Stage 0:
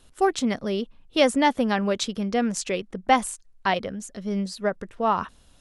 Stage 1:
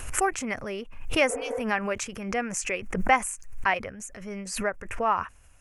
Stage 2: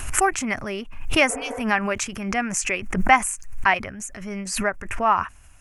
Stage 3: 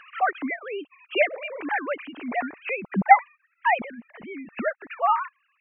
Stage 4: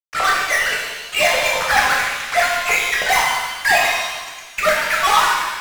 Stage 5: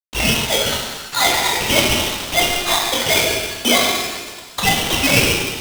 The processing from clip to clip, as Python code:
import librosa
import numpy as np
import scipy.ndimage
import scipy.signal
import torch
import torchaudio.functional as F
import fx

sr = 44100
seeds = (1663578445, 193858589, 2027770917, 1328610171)

y1 = fx.spec_repair(x, sr, seeds[0], start_s=1.32, length_s=0.26, low_hz=260.0, high_hz=2200.0, source='after')
y1 = fx.curve_eq(y1, sr, hz=(110.0, 180.0, 2500.0, 3700.0, 6400.0), db=(0, -12, 4, -19, 0))
y1 = fx.pre_swell(y1, sr, db_per_s=69.0)
y2 = fx.peak_eq(y1, sr, hz=490.0, db=-11.5, octaves=0.32)
y2 = y2 * 10.0 ** (6.0 / 20.0)
y3 = fx.sine_speech(y2, sr)
y3 = y3 * 10.0 ** (-2.5 / 20.0)
y4 = fx.filter_lfo_highpass(y3, sr, shape='saw_down', hz=9.6, low_hz=620.0, high_hz=2300.0, q=4.8)
y4 = fx.fuzz(y4, sr, gain_db=30.0, gate_db=-34.0)
y4 = fx.rev_shimmer(y4, sr, seeds[1], rt60_s=1.3, semitones=7, shimmer_db=-8, drr_db=-4.0)
y4 = y4 * 10.0 ** (-3.5 / 20.0)
y5 = y4 * np.sign(np.sin(2.0 * np.pi * 1400.0 * np.arange(len(y4)) / sr))